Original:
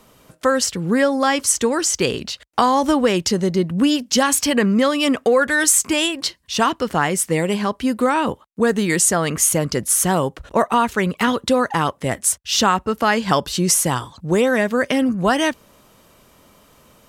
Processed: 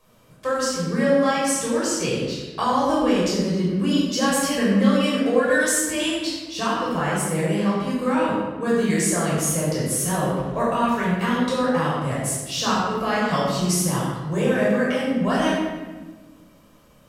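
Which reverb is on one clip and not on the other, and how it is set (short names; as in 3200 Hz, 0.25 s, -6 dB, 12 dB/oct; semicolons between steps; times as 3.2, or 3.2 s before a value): shoebox room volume 1000 m³, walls mixed, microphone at 5.6 m; gain -15 dB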